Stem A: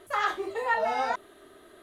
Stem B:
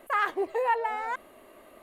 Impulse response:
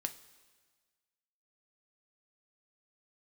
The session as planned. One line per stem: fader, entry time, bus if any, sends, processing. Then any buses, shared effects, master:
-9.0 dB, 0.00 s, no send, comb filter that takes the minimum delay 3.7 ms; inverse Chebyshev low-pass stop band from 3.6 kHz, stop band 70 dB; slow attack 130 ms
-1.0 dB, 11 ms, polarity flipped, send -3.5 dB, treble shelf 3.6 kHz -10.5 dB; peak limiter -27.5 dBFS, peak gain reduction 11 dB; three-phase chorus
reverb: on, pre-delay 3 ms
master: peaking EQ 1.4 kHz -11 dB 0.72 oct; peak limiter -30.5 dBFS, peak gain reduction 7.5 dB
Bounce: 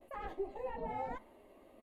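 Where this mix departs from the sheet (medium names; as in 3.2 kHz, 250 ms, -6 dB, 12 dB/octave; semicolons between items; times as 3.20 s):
stem B -1.0 dB -> -7.5 dB; master: missing peak limiter -30.5 dBFS, peak gain reduction 7.5 dB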